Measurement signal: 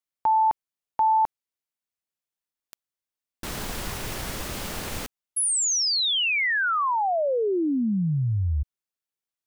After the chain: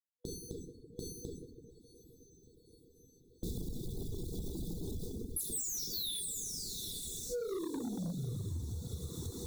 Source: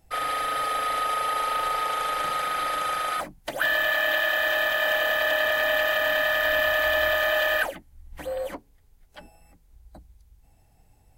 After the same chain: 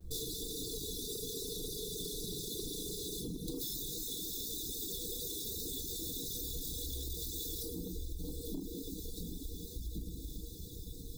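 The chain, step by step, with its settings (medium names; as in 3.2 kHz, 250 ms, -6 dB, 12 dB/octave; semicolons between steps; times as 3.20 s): median filter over 9 samples; bass shelf 340 Hz +5.5 dB; reverb removal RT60 0.88 s; FFT band-reject 490–3400 Hz; peak limiter -29.5 dBFS; plate-style reverb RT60 1.9 s, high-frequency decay 0.5×, DRR -5 dB; gate with hold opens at -54 dBFS, hold 71 ms; saturation -25 dBFS; treble shelf 7.4 kHz +9.5 dB; echo that smears into a reverb 847 ms, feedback 74%, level -15.5 dB; compression 6:1, threshold -40 dBFS; reverb removal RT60 0.74 s; trim +4.5 dB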